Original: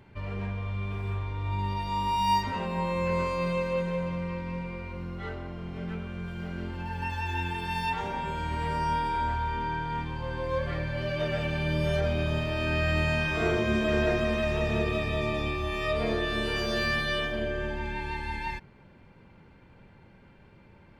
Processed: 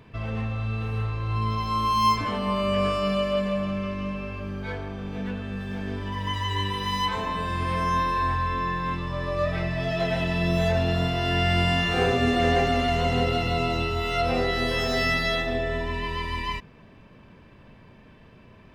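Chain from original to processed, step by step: varispeed +12%; gain +4 dB

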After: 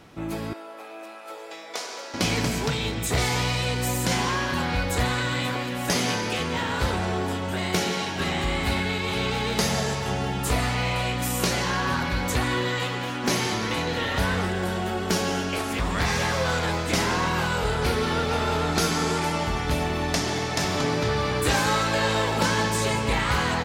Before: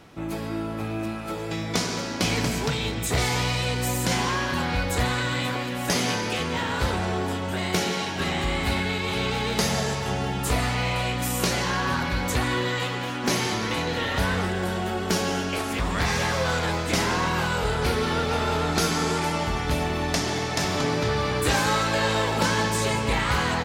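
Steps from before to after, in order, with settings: 0.53–2.14 ladder high-pass 410 Hz, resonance 25%

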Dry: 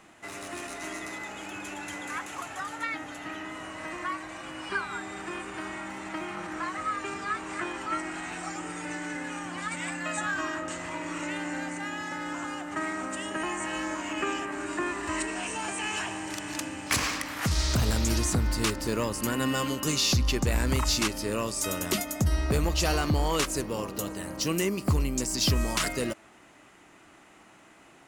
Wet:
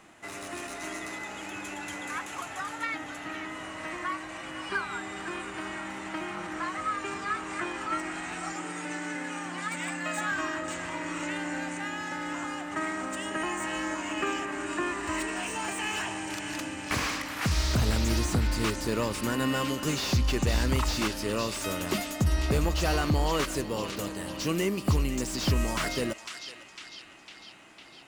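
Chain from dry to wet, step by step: 8.52–10.32 HPF 130 Hz 24 dB/oct; narrowing echo 0.503 s, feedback 71%, band-pass 2900 Hz, level -10 dB; slew limiter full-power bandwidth 120 Hz

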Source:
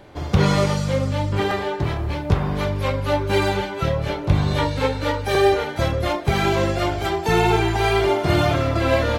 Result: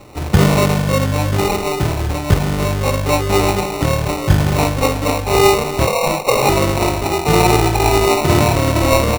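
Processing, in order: 5.87–6.49 frequency shift +420 Hz; speakerphone echo 0.32 s, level -12 dB; sample-and-hold 27×; gain +5 dB

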